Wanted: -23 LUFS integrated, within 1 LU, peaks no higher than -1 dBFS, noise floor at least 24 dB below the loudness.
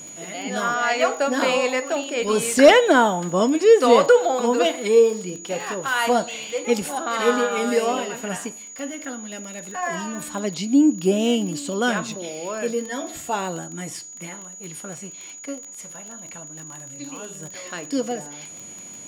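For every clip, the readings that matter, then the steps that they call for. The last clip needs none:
ticks 23/s; steady tone 6800 Hz; tone level -37 dBFS; loudness -20.5 LUFS; peak -1.5 dBFS; loudness target -23.0 LUFS
-> de-click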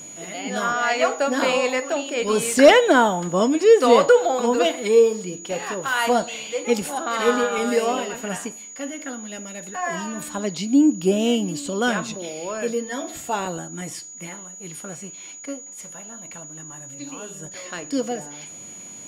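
ticks 0.10/s; steady tone 6800 Hz; tone level -37 dBFS
-> notch 6800 Hz, Q 30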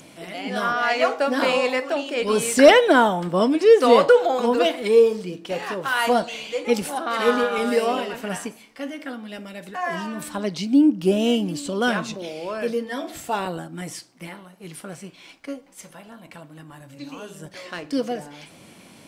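steady tone none; loudness -20.5 LUFS; peak -1.5 dBFS; loudness target -23.0 LUFS
-> gain -2.5 dB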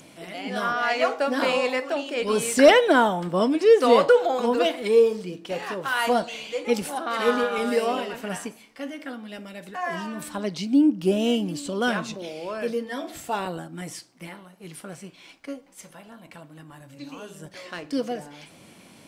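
loudness -23.0 LUFS; peak -4.0 dBFS; noise floor -51 dBFS

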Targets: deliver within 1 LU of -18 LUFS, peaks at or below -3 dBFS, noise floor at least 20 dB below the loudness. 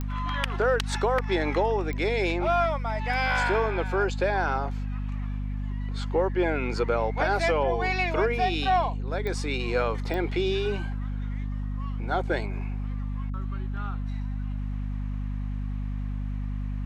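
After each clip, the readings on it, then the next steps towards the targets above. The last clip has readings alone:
clicks 4; hum 50 Hz; harmonics up to 250 Hz; hum level -28 dBFS; loudness -28.0 LUFS; peak -13.0 dBFS; loudness target -18.0 LUFS
-> de-click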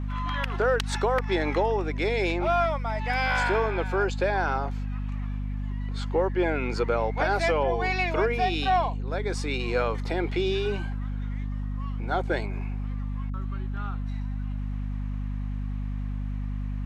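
clicks 0; hum 50 Hz; harmonics up to 250 Hz; hum level -28 dBFS
-> notches 50/100/150/200/250 Hz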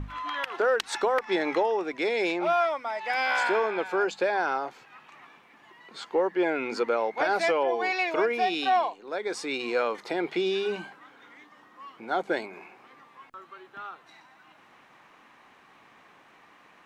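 hum none; loudness -27.0 LUFS; peak -14.5 dBFS; loudness target -18.0 LUFS
-> gain +9 dB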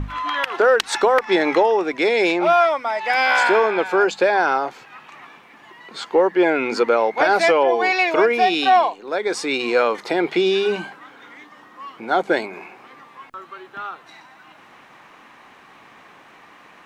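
loudness -18.0 LUFS; peak -5.5 dBFS; noise floor -48 dBFS

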